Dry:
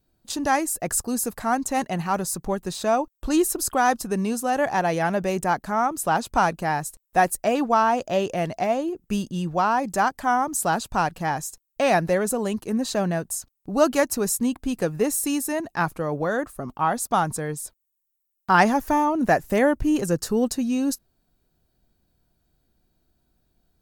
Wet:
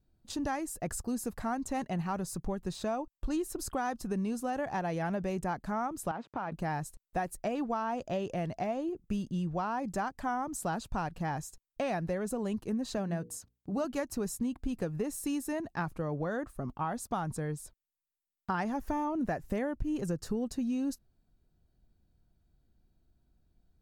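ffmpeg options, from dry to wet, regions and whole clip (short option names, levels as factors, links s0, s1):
-filter_complex "[0:a]asettb=1/sr,asplit=3[s0][s1][s2];[s0]atrim=end=6.114[s3];[s1]atrim=start=6.11:end=6.52,asetpts=PTS-STARTPTS,afade=t=in:d=0.004:c=qsin,afade=t=out:st=0.406:d=0.004:c=qsin,acompressor=threshold=0.0708:ratio=4:attack=3.2:release=140:knee=1:detection=peak,aeval=exprs='sgn(val(0))*max(abs(val(0))-0.00891,0)':c=same,highpass=180,lowpass=2400[s4];[s2]atrim=start=6.516[s5];[s3][s4]acrossfade=d=0.004:c1=hsin:c2=qsin[s6];[s6][s5]acrossfade=d=0.004:c1=qsin:c2=hsin,asettb=1/sr,asplit=3[s7][s8][s9];[s7]atrim=end=12.974[s10];[s8]atrim=start=12.97:end=13.85,asetpts=PTS-STARTPTS,afade=t=in:d=0.004:c=qsin,afade=t=out:st=0.876:d=0.004:c=qsin,highpass=74,bandreject=f=60:t=h:w=6,bandreject=f=120:t=h:w=6,bandreject=f=180:t=h:w=6,bandreject=f=240:t=h:w=6,bandreject=f=300:t=h:w=6,bandreject=f=360:t=h:w=6,bandreject=f=420:t=h:w=6,bandreject=f=480:t=h:w=6[s11];[s9]atrim=start=13.846[s12];[s10][s11]acrossfade=d=0.004:c1=hsin:c2=qsin[s13];[s13][s12]acrossfade=d=0.004:c1=qsin:c2=hsin,lowshelf=f=210:g=10,acompressor=threshold=0.0891:ratio=6,highshelf=f=7500:g=-8,volume=0.376"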